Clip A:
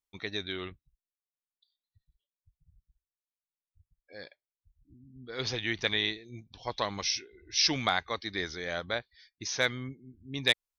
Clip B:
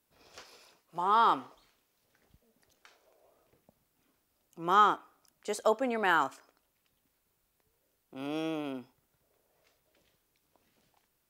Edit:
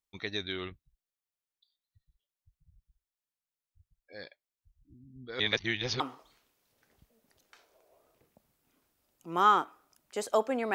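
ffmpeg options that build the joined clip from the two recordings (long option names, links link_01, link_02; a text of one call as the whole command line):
ffmpeg -i cue0.wav -i cue1.wav -filter_complex "[0:a]apad=whole_dur=10.74,atrim=end=10.74,asplit=2[link_01][link_02];[link_01]atrim=end=5.402[link_03];[link_02]atrim=start=5.398:end=6.002,asetpts=PTS-STARTPTS,areverse[link_04];[1:a]atrim=start=1.318:end=6.06[link_05];[link_03][link_04]acrossfade=duration=0.004:curve1=hsin:curve2=hsin[link_06];[link_06][link_05]acrossfade=duration=0.004:curve1=hsin:curve2=hsin" out.wav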